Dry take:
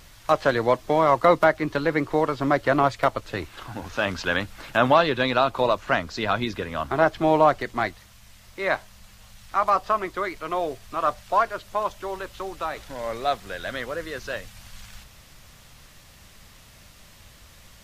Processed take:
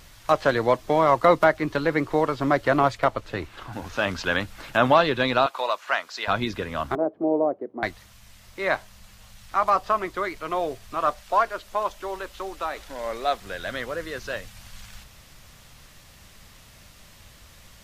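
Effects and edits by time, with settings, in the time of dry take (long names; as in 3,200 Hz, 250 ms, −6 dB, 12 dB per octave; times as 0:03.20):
0:02.97–0:03.73: high-shelf EQ 4,800 Hz −7 dB
0:05.46–0:06.28: high-pass filter 780 Hz
0:06.95–0:07.83: flat-topped band-pass 380 Hz, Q 1.1
0:11.10–0:13.41: parametric band 130 Hz −13.5 dB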